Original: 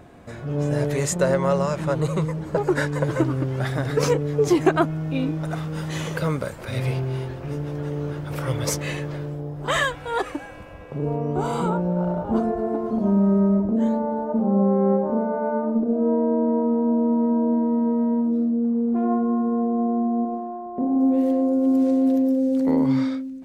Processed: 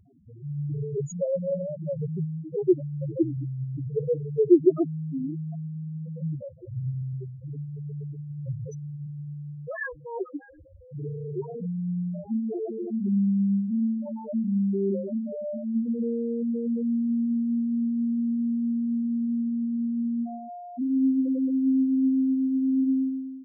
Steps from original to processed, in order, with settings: loudest bins only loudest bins 2; peaking EQ 360 Hz +8.5 dB 0.38 oct; band-stop 840 Hz, Q 12; trim -4 dB

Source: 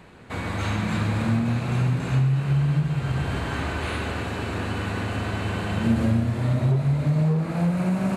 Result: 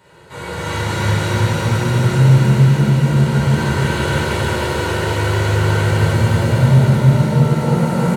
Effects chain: high-pass 84 Hz; treble shelf 4.5 kHz +6.5 dB; band-stop 2.4 kHz, Q 12; comb 2.1 ms, depth 65%; feedback delay 311 ms, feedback 60%, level -3 dB; pitch-shifted reverb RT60 2.9 s, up +7 st, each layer -8 dB, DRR -10 dB; trim -6 dB

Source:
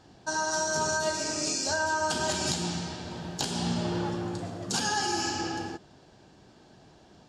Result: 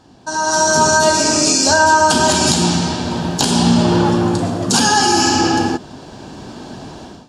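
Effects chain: graphic EQ with 31 bands 250 Hz +7 dB, 1 kHz +4 dB, 2 kHz -4 dB, 10 kHz +5 dB; in parallel at -0.5 dB: peak limiter -22.5 dBFS, peak gain reduction 8 dB; on the sum: level rider gain up to 16 dB

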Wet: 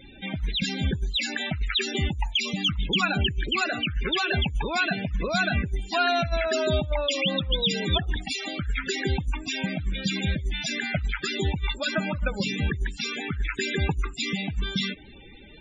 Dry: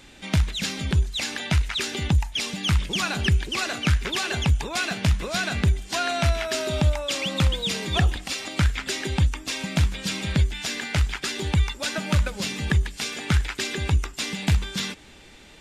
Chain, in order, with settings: compressor with a negative ratio -23 dBFS, ratio -0.5; loudest bins only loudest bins 32; trim +1 dB

